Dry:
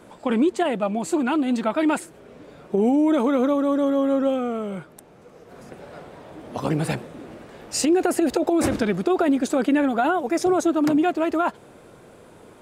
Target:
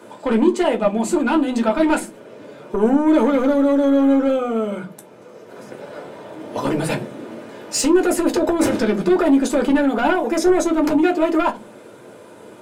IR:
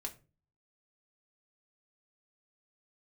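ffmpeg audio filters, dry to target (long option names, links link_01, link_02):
-filter_complex "[0:a]highpass=frequency=130:width=0.5412,highpass=frequency=130:width=1.3066,asplit=2[link_01][link_02];[link_02]aeval=exprs='0.422*sin(PI/2*2.51*val(0)/0.422)':channel_layout=same,volume=-3.5dB[link_03];[link_01][link_03]amix=inputs=2:normalize=0[link_04];[1:a]atrim=start_sample=2205,asetrate=66150,aresample=44100[link_05];[link_04][link_05]afir=irnorm=-1:irlink=0"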